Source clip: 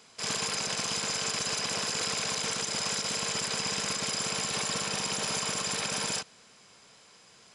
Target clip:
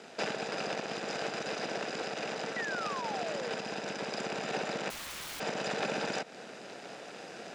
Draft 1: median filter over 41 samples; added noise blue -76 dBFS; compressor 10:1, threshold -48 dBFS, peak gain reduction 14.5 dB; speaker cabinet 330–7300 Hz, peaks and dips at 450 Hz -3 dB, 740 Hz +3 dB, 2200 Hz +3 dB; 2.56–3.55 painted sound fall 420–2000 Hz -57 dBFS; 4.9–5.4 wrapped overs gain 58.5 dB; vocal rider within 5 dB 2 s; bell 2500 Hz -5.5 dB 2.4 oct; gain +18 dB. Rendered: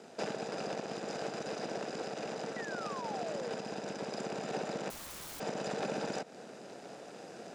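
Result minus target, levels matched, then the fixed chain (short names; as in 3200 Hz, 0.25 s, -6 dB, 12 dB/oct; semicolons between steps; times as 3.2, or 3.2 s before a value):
2000 Hz band -4.5 dB
median filter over 41 samples; added noise blue -76 dBFS; compressor 10:1, threshold -48 dBFS, peak gain reduction 14.5 dB; speaker cabinet 330–7300 Hz, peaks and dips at 450 Hz -3 dB, 740 Hz +3 dB, 2200 Hz +3 dB; 2.56–3.55 painted sound fall 420–2000 Hz -57 dBFS; 4.9–5.4 wrapped overs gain 58.5 dB; vocal rider within 5 dB 2 s; bell 2500 Hz +3.5 dB 2.4 oct; gain +18 dB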